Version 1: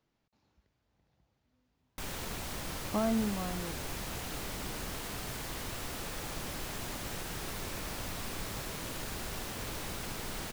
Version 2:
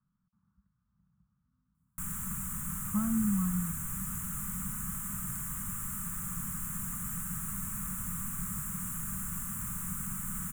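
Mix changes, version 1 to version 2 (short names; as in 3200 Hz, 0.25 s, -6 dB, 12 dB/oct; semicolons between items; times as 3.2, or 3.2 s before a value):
speech: add LPF 1500 Hz 24 dB/oct; master: add EQ curve 110 Hz 0 dB, 190 Hz +10 dB, 350 Hz -25 dB, 750 Hz -22 dB, 1200 Hz +2 dB, 2100 Hz -10 dB, 3000 Hz -15 dB, 4700 Hz -27 dB, 7400 Hz +8 dB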